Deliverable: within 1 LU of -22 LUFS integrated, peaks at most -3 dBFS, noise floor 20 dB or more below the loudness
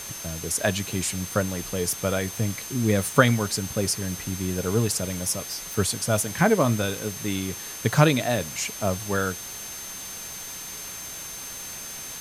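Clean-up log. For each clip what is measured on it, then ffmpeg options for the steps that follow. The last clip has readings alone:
steady tone 6300 Hz; tone level -38 dBFS; noise floor -37 dBFS; noise floor target -46 dBFS; loudness -26.0 LUFS; peak -2.0 dBFS; loudness target -22.0 LUFS
-> -af "bandreject=f=6.3k:w=30"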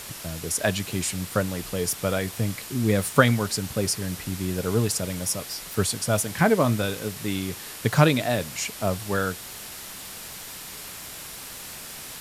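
steady tone none; noise floor -39 dBFS; noise floor target -46 dBFS
-> -af "afftdn=nr=7:nf=-39"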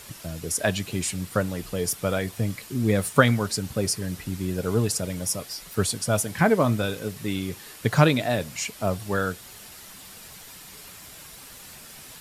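noise floor -45 dBFS; noise floor target -46 dBFS
-> -af "afftdn=nr=6:nf=-45"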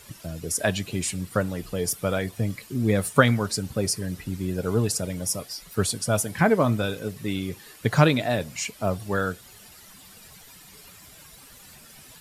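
noise floor -49 dBFS; loudness -25.5 LUFS; peak -2.0 dBFS; loudness target -22.0 LUFS
-> -af "volume=3.5dB,alimiter=limit=-3dB:level=0:latency=1"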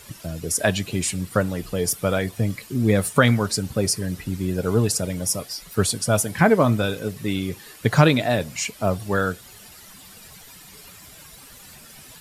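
loudness -22.5 LUFS; peak -3.0 dBFS; noise floor -46 dBFS

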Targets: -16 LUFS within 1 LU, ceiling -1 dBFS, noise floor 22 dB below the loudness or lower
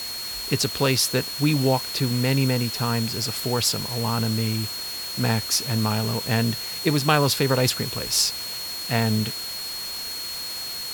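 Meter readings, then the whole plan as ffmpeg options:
steady tone 4300 Hz; tone level -31 dBFS; noise floor -32 dBFS; noise floor target -46 dBFS; loudness -23.5 LUFS; peak -4.5 dBFS; loudness target -16.0 LUFS
-> -af "bandreject=f=4.3k:w=30"
-af "afftdn=nr=14:nf=-32"
-af "volume=7.5dB,alimiter=limit=-1dB:level=0:latency=1"

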